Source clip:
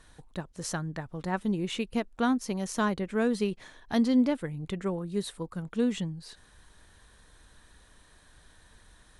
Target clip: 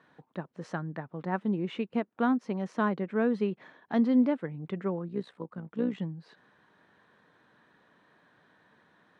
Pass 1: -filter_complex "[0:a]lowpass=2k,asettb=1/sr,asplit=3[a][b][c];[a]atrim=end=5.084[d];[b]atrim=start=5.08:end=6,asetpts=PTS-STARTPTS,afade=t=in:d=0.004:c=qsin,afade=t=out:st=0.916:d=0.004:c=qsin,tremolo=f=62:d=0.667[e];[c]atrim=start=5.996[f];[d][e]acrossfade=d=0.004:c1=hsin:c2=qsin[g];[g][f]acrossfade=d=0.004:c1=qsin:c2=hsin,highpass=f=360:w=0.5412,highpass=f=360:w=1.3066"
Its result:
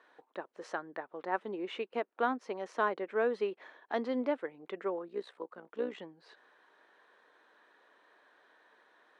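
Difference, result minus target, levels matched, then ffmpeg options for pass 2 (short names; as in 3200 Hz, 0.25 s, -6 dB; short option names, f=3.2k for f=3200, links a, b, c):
125 Hz band -17.0 dB
-filter_complex "[0:a]lowpass=2k,asettb=1/sr,asplit=3[a][b][c];[a]atrim=end=5.084[d];[b]atrim=start=5.08:end=6,asetpts=PTS-STARTPTS,afade=t=in:d=0.004:c=qsin,afade=t=out:st=0.916:d=0.004:c=qsin,tremolo=f=62:d=0.667[e];[c]atrim=start=5.996[f];[d][e]acrossfade=d=0.004:c1=hsin:c2=qsin[g];[g][f]acrossfade=d=0.004:c1=qsin:c2=hsin,highpass=f=150:w=0.5412,highpass=f=150:w=1.3066"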